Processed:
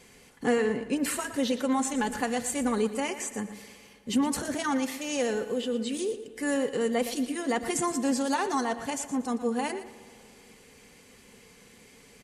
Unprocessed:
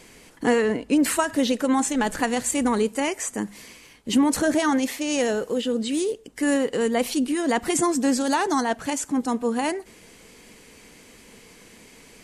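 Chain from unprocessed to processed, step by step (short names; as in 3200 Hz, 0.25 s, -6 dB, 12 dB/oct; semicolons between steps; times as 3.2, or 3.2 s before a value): notch comb 320 Hz; on a send: feedback echo 0.117 s, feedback 25%, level -13 dB; on the sum: spring tank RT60 2.6 s, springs 54 ms, chirp 55 ms, DRR 16.5 dB; gain -4.5 dB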